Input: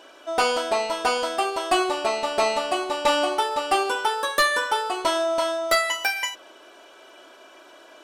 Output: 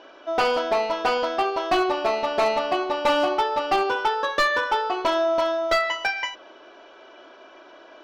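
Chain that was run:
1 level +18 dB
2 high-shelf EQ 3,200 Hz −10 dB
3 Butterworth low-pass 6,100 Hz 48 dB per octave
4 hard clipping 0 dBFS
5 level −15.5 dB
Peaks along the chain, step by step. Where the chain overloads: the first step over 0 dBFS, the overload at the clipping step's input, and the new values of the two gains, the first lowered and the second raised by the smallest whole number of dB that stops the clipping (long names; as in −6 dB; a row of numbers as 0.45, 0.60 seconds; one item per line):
+5.0, +5.0, +5.0, 0.0, −15.5 dBFS
step 1, 5.0 dB
step 1 +13 dB, step 5 −10.5 dB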